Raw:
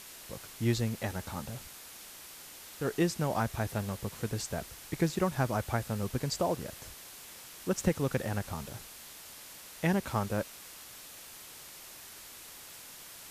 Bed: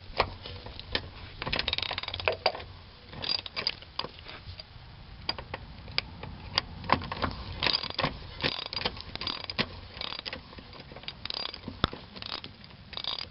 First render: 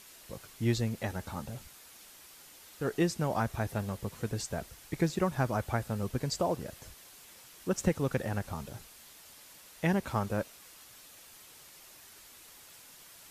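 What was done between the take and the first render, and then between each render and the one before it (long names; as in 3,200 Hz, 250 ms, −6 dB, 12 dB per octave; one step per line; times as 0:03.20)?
broadband denoise 6 dB, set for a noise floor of −49 dBFS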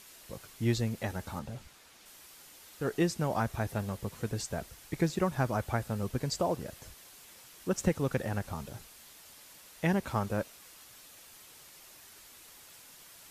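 0:01.39–0:02.06: high-shelf EQ 8,100 Hz −11.5 dB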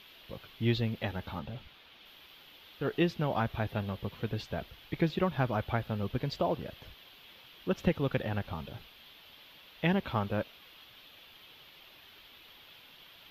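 drawn EQ curve 1,900 Hz 0 dB, 3,300 Hz +9 dB, 8,200 Hz −28 dB, 14,000 Hz −6 dB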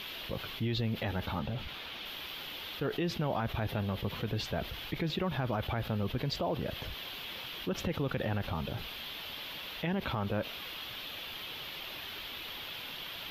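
brickwall limiter −25.5 dBFS, peak gain reduction 11 dB
envelope flattener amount 50%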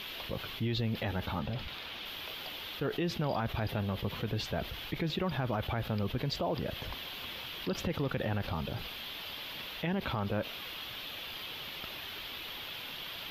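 mix in bed −23 dB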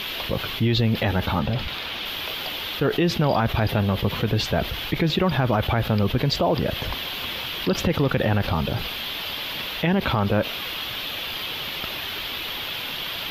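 level +12 dB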